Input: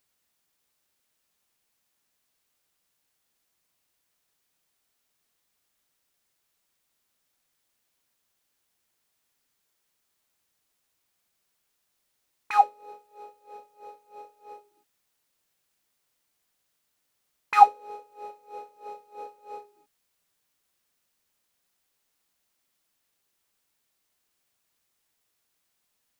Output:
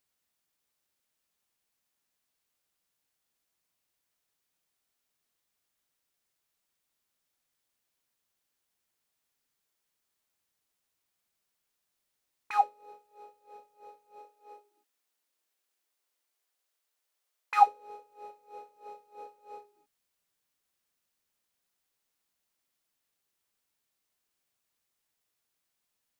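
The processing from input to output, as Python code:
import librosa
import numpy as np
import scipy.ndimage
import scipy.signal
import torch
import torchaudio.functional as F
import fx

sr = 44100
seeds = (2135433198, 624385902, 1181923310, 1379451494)

y = fx.highpass(x, sr, hz=fx.line((14.19, 190.0), (17.65, 430.0)), slope=24, at=(14.19, 17.65), fade=0.02)
y = y * librosa.db_to_amplitude(-6.0)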